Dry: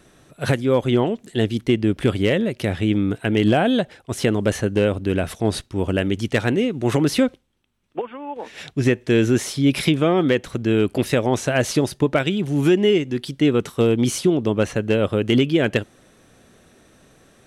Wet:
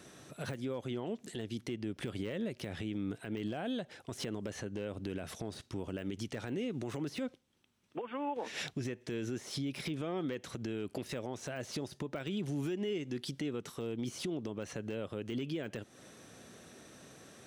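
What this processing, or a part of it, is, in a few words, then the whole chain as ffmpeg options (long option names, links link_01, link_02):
broadcast voice chain: -filter_complex "[0:a]asettb=1/sr,asplit=3[link_01][link_02][link_03];[link_01]atrim=end=4.474[link_04];[link_02]atrim=start=4.47:end=4.89,asetpts=PTS-STARTPTS,afade=type=in:duration=0.004:curve=qsin,afade=type=out:start_time=0.416:duration=0.004:curve=qsin,highshelf=frequency=10000:gain=-8[link_05];[link_03]atrim=start=4.886[link_06];[link_04][link_05]acrossfade=duration=0.004:curve1=hsin:curve2=qsin[link_07];[link_07][link_06]acrossfade=duration=0.004:curve1=qsin:curve2=hsin,highpass=98,deesser=0.7,acompressor=threshold=-30dB:ratio=4,equalizer=frequency=5700:width_type=o:width=0.91:gain=4.5,alimiter=level_in=2.5dB:limit=-24dB:level=0:latency=1:release=94,volume=-2.5dB,volume=-2dB"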